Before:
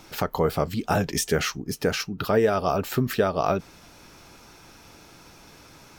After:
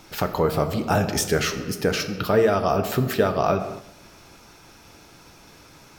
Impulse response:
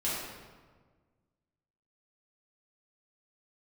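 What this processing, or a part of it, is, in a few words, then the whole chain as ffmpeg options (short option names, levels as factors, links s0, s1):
keyed gated reverb: -filter_complex "[0:a]asplit=3[s0][s1][s2];[1:a]atrim=start_sample=2205[s3];[s1][s3]afir=irnorm=-1:irlink=0[s4];[s2]apad=whole_len=263860[s5];[s4][s5]sidechaingate=range=0.0224:threshold=0.00447:ratio=16:detection=peak,volume=0.237[s6];[s0][s6]amix=inputs=2:normalize=0"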